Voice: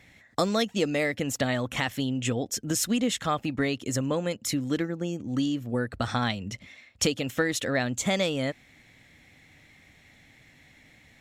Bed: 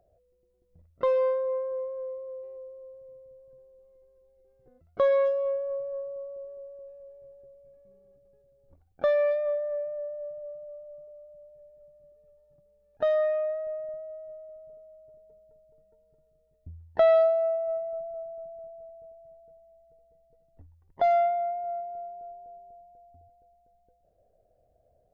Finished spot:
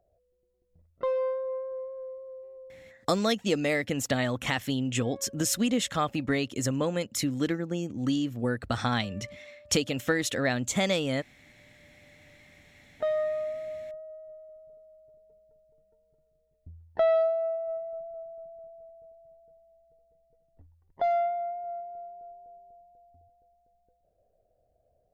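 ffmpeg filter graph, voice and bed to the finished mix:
-filter_complex "[0:a]adelay=2700,volume=0.944[s0];[1:a]volume=6.31,afade=t=out:st=2.73:d=0.37:silence=0.105925,afade=t=in:st=11.35:d=0.93:silence=0.1[s1];[s0][s1]amix=inputs=2:normalize=0"

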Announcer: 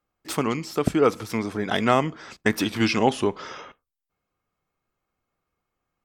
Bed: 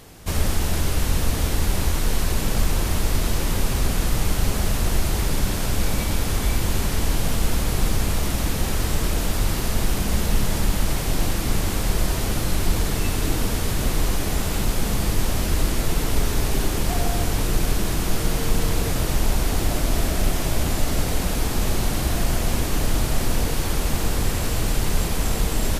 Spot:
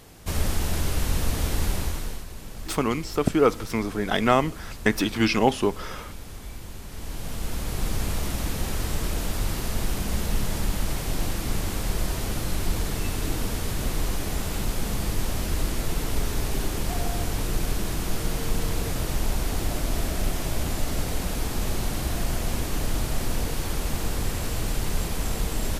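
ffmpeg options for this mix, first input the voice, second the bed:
-filter_complex "[0:a]adelay=2400,volume=1[s0];[1:a]volume=2.66,afade=t=out:st=1.66:d=0.59:silence=0.211349,afade=t=in:st=6.86:d=1.19:silence=0.251189[s1];[s0][s1]amix=inputs=2:normalize=0"

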